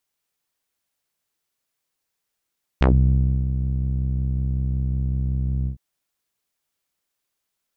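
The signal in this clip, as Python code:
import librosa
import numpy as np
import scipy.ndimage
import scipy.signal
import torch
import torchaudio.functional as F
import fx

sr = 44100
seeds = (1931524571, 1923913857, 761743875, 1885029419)

y = fx.sub_voice(sr, note=36, wave='saw', cutoff_hz=150.0, q=1.5, env_oct=5.0, env_s=0.12, attack_ms=2.8, decay_s=0.64, sustain_db=-9, release_s=0.11, note_s=2.85, slope=12)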